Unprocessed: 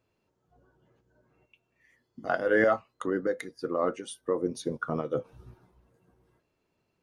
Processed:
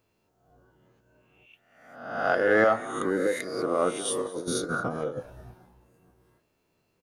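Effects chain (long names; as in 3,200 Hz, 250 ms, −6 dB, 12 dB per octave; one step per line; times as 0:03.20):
peak hold with a rise ahead of every peak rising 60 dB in 0.82 s
high-shelf EQ 8,500 Hz +8.5 dB
0:04.05–0:05.18: compressor whose output falls as the input rises −31 dBFS, ratio −0.5
flanger 0.58 Hz, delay 0.8 ms, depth 10 ms, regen +90%
in parallel at −6.5 dB: soft clipping −22 dBFS, distortion −14 dB
on the sum: echo with shifted repeats 214 ms, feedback 37%, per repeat +120 Hz, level −20 dB
level +2.5 dB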